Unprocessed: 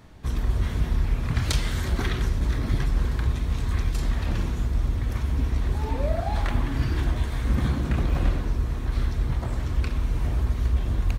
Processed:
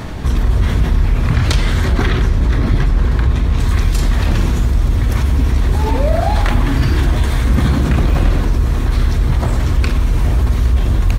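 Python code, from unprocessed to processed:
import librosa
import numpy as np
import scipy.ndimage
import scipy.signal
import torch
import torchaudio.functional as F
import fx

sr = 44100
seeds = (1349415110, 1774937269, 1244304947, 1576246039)

y = fx.high_shelf(x, sr, hz=4800.0, db=fx.steps((0.0, -3.0), (1.35, -8.5), (3.59, 2.5)))
y = fx.env_flatten(y, sr, amount_pct=50)
y = y * librosa.db_to_amplitude(8.0)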